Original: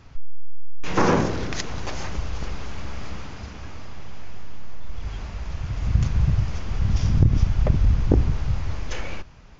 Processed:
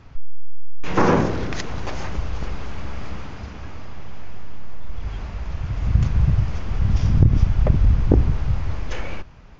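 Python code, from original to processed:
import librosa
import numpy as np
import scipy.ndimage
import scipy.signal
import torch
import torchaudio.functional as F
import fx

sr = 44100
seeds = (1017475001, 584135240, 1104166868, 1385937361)

y = fx.high_shelf(x, sr, hz=4400.0, db=-9.5)
y = y * 10.0 ** (2.5 / 20.0)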